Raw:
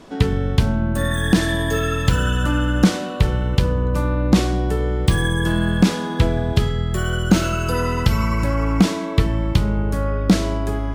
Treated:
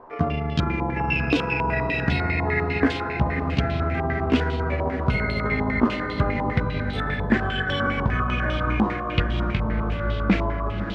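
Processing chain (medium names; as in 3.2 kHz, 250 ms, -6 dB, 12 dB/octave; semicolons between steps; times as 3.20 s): pitch bend over the whole clip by +8 st ending unshifted; echo that smears into a reverb 596 ms, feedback 58%, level -9 dB; step-sequenced low-pass 10 Hz 970–3300 Hz; trim -5.5 dB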